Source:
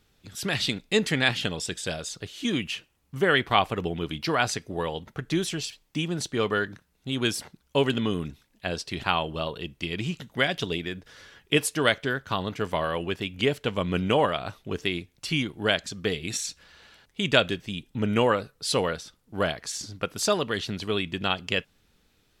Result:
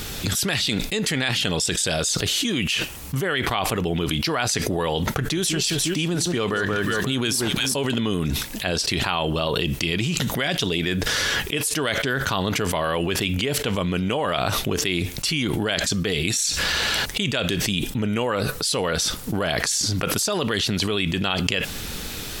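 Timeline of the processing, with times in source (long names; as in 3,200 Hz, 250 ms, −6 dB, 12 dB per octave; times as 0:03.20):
0:05.18–0:07.94: delay that swaps between a low-pass and a high-pass 178 ms, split 1,500 Hz, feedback 51%, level −10.5 dB
whole clip: high-shelf EQ 4,700 Hz +8 dB; envelope flattener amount 100%; level −8 dB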